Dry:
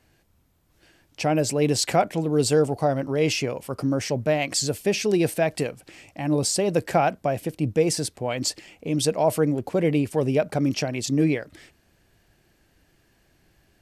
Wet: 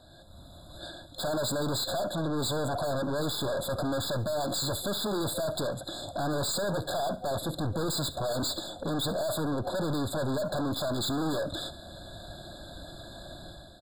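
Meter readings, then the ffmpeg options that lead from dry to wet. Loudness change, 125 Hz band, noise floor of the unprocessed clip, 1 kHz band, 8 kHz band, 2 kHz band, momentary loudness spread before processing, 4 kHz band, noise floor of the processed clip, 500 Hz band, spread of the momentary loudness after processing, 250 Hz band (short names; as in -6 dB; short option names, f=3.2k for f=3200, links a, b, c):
-7.0 dB, -7.0 dB, -64 dBFS, -6.5 dB, -7.5 dB, -7.5 dB, 7 LU, -1.5 dB, -49 dBFS, -8.0 dB, 15 LU, -8.0 dB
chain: -filter_complex "[0:a]superequalizer=7b=0.562:8b=2.82:13b=3.98,dynaudnorm=f=170:g=5:m=11.5dB,aeval=exprs='(tanh(56.2*val(0)+0.15)-tanh(0.15))/56.2':c=same,asplit=2[a][b];[b]aecho=0:1:69|138|207:0.133|0.048|0.0173[c];[a][c]amix=inputs=2:normalize=0,afftfilt=real='re*eq(mod(floor(b*sr/1024/1700),2),0)':imag='im*eq(mod(floor(b*sr/1024/1700),2),0)':win_size=1024:overlap=0.75,volume=6dB"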